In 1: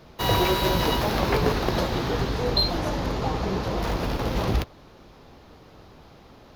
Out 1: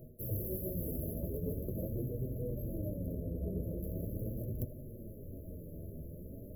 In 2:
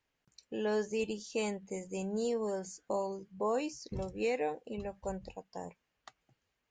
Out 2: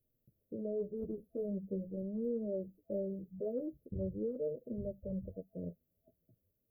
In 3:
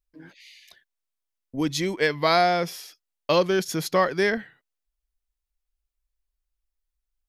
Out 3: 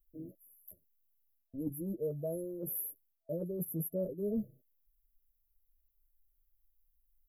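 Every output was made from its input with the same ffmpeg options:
-af "afftfilt=real='re*(1-between(b*sr/4096,660,11000))':imag='im*(1-between(b*sr/4096,660,11000))':win_size=4096:overlap=0.75,bass=frequency=250:gain=7,treble=frequency=4000:gain=14,areverse,acompressor=threshold=-33dB:ratio=12,areverse,flanger=delay=8.1:depth=4.1:regen=-8:speed=0.42:shape=sinusoidal,volume=2.5dB"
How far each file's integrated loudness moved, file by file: −15.5, −3.5, −14.5 LU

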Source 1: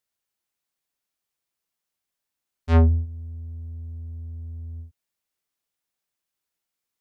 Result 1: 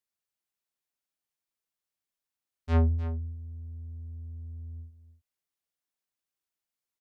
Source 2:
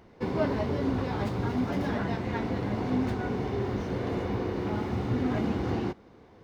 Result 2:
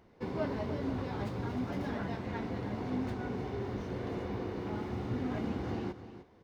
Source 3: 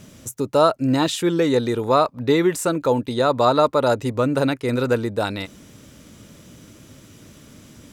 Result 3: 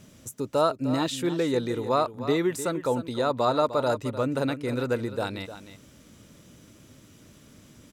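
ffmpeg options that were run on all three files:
-af "aecho=1:1:304:0.237,volume=-7dB"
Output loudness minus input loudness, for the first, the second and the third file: −11.0, −6.5, −7.0 LU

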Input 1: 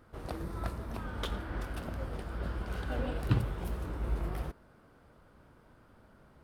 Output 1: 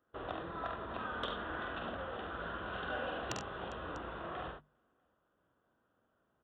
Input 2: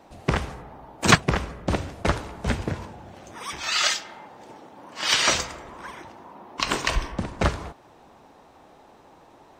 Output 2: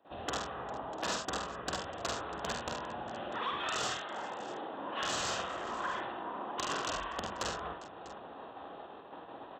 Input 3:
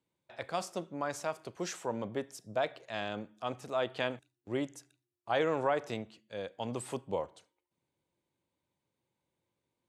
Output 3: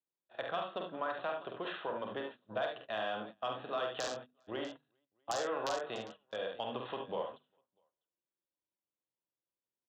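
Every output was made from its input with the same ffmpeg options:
-filter_complex "[0:a]asplit=2[link_01][link_02];[link_02]acompressor=threshold=-36dB:ratio=20,volume=-2dB[link_03];[link_01][link_03]amix=inputs=2:normalize=0,aresample=8000,aresample=44100,lowshelf=frequency=230:gain=-9.5,aresample=16000,aeval=exprs='(mod(7.94*val(0)+1,2)-1)/7.94':channel_layout=same,aresample=44100,acrossover=split=620|1300[link_04][link_05][link_06];[link_04]acompressor=threshold=-45dB:ratio=4[link_07];[link_05]acompressor=threshold=-39dB:ratio=4[link_08];[link_06]acompressor=threshold=-40dB:ratio=4[link_09];[link_07][link_08][link_09]amix=inputs=3:normalize=0,bandreject=frequency=890:width=12,aecho=1:1:47|72|94|402|646:0.531|0.473|0.188|0.112|0.133,agate=range=-21dB:threshold=-47dB:ratio=16:detection=peak,highpass=frequency=81:poles=1,equalizer=frequency=2200:width_type=o:width=0.25:gain=-14,bandreject=frequency=50:width_type=h:width=6,bandreject=frequency=100:width_type=h:width=6,bandreject=frequency=150:width_type=h:width=6,bandreject=frequency=200:width_type=h:width=6,bandreject=frequency=250:width_type=h:width=6,asoftclip=type=tanh:threshold=-23dB,volume=1dB"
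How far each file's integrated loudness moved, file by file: −4.0, −13.0, −3.0 LU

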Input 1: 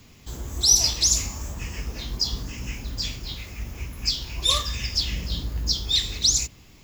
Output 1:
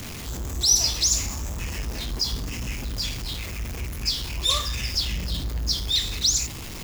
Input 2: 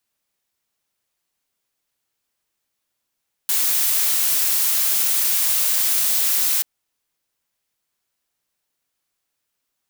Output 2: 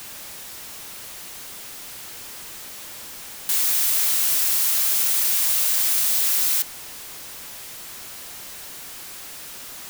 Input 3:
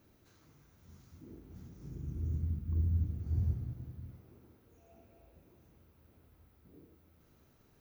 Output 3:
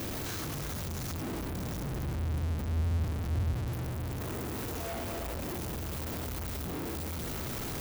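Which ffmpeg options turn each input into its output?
-af "aeval=exprs='val(0)+0.5*0.0398*sgn(val(0))':channel_layout=same,volume=-2.5dB"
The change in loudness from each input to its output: −1.5, −1.5, +1.5 LU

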